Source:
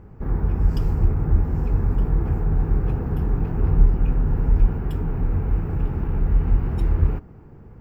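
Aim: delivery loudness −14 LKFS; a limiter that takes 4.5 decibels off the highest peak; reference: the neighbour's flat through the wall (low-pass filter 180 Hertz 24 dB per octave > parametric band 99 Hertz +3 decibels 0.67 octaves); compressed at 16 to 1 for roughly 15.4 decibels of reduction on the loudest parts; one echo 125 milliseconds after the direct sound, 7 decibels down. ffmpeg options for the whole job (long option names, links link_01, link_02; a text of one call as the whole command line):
ffmpeg -i in.wav -af "acompressor=threshold=-25dB:ratio=16,alimiter=limit=-23dB:level=0:latency=1,lowpass=frequency=180:width=0.5412,lowpass=frequency=180:width=1.3066,equalizer=frequency=99:width_type=o:width=0.67:gain=3,aecho=1:1:125:0.447,volume=18.5dB" out.wav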